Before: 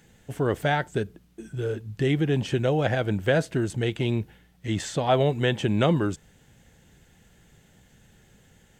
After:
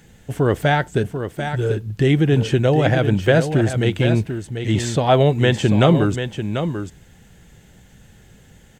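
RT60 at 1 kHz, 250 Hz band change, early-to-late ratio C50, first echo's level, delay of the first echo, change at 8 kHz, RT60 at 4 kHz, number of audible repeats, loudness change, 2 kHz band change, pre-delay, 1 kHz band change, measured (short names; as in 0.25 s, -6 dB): none, +8.0 dB, none, -8.5 dB, 0.741 s, +6.5 dB, none, 1, +7.0 dB, +6.5 dB, none, +6.5 dB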